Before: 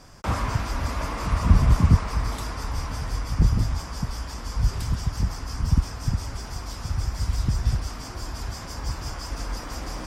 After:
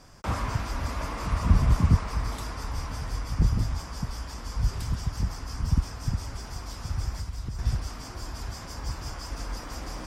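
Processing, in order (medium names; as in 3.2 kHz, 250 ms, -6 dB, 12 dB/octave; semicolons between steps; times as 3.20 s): 7.16–7.59 s: compression 6:1, threshold -27 dBFS, peak gain reduction 9 dB; trim -3.5 dB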